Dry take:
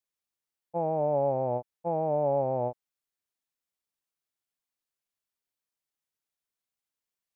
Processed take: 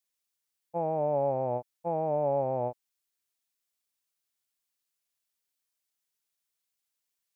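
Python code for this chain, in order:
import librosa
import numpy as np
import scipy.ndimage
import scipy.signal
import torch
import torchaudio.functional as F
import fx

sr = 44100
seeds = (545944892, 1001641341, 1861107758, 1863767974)

y = fx.high_shelf(x, sr, hz=2100.0, db=9.0)
y = y * librosa.db_to_amplitude(-2.0)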